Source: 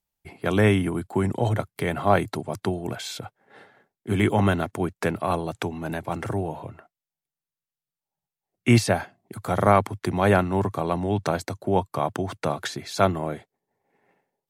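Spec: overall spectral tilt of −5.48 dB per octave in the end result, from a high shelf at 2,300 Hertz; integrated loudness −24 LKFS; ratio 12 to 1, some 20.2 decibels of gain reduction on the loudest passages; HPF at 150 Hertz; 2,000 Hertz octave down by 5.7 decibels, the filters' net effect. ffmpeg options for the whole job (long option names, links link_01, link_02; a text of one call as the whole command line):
ffmpeg -i in.wav -af "highpass=150,equalizer=frequency=2000:width_type=o:gain=-4.5,highshelf=frequency=2300:gain=-6,acompressor=threshold=-35dB:ratio=12,volume=17dB" out.wav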